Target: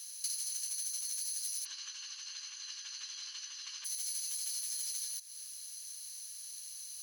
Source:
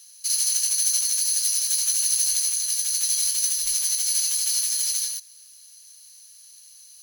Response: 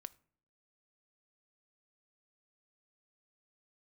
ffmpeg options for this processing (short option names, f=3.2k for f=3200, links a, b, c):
-filter_complex "[0:a]acompressor=threshold=-37dB:ratio=16,asplit=3[a][b][c];[a]afade=t=out:st=1.64:d=0.02[d];[b]highpass=f=160:w=0.5412,highpass=f=160:w=1.3066,equalizer=f=180:t=q:w=4:g=-8,equalizer=f=260:t=q:w=4:g=-9,equalizer=f=400:t=q:w=4:g=5,equalizer=f=1.1k:t=q:w=4:g=10,equalizer=f=1.6k:t=q:w=4:g=9,equalizer=f=2.9k:t=q:w=4:g=9,lowpass=f=5.4k:w=0.5412,lowpass=f=5.4k:w=1.3066,afade=t=in:st=1.64:d=0.02,afade=t=out:st=3.84:d=0.02[e];[c]afade=t=in:st=3.84:d=0.02[f];[d][e][f]amix=inputs=3:normalize=0,volume=2dB"